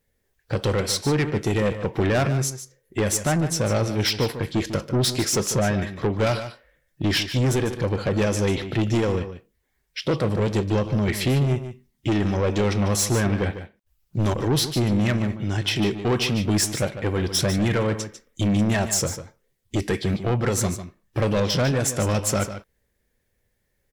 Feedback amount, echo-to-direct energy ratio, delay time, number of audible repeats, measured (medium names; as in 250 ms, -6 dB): no regular repeats, -11.0 dB, 148 ms, 1